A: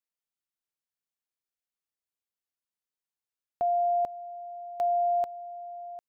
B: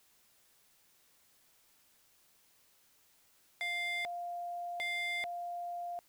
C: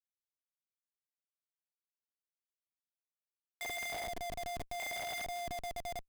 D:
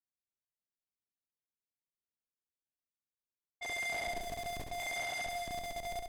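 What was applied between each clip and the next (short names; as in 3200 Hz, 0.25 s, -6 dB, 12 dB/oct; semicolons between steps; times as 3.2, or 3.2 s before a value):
added noise white -68 dBFS; wavefolder -31 dBFS
chorus voices 6, 0.49 Hz, delay 20 ms, depth 4.1 ms; Schmitt trigger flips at -43.5 dBFS; gain +6 dB
low-pass opened by the level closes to 370 Hz, open at -38.5 dBFS; on a send: flutter echo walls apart 11.7 m, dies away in 0.83 s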